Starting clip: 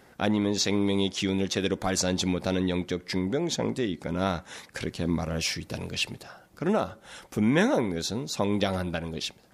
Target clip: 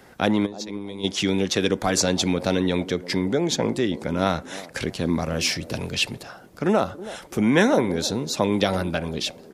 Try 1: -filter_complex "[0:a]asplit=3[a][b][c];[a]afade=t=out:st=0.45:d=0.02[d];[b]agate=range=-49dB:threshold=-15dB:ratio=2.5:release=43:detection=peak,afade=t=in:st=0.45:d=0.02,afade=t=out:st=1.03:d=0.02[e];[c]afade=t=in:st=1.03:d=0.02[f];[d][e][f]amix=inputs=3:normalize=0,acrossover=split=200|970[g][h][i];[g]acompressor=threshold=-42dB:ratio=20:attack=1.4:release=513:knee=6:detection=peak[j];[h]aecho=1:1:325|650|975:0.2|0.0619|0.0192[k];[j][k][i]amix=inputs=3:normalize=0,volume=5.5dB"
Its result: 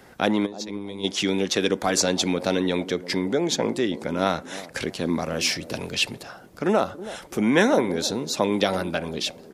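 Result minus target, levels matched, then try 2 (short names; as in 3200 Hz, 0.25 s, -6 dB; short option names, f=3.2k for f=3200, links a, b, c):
compressor: peak gain reduction +11 dB
-filter_complex "[0:a]asplit=3[a][b][c];[a]afade=t=out:st=0.45:d=0.02[d];[b]agate=range=-49dB:threshold=-15dB:ratio=2.5:release=43:detection=peak,afade=t=in:st=0.45:d=0.02,afade=t=out:st=1.03:d=0.02[e];[c]afade=t=in:st=1.03:d=0.02[f];[d][e][f]amix=inputs=3:normalize=0,acrossover=split=200|970[g][h][i];[g]acompressor=threshold=-30.5dB:ratio=20:attack=1.4:release=513:knee=6:detection=peak[j];[h]aecho=1:1:325|650|975:0.2|0.0619|0.0192[k];[j][k][i]amix=inputs=3:normalize=0,volume=5.5dB"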